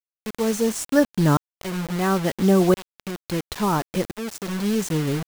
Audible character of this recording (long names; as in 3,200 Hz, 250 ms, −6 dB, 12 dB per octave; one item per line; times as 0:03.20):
tremolo saw up 0.73 Hz, depth 95%
a quantiser's noise floor 6 bits, dither none